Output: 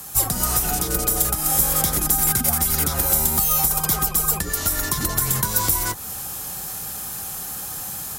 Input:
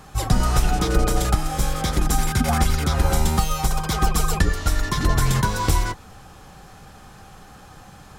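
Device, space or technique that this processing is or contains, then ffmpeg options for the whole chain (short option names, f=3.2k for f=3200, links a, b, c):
FM broadcast chain: -filter_complex "[0:a]highpass=f=68:p=1,dynaudnorm=f=160:g=3:m=6dB,acrossover=split=160|2000[a][b][c];[a]acompressor=threshold=-24dB:ratio=4[d];[b]acompressor=threshold=-24dB:ratio=4[e];[c]acompressor=threshold=-37dB:ratio=4[f];[d][e][f]amix=inputs=3:normalize=0,aemphasis=mode=production:type=50fm,alimiter=limit=-13dB:level=0:latency=1:release=197,asoftclip=type=hard:threshold=-17dB,lowpass=f=15k:w=0.5412,lowpass=f=15k:w=1.3066,aemphasis=mode=production:type=50fm,volume=-1dB"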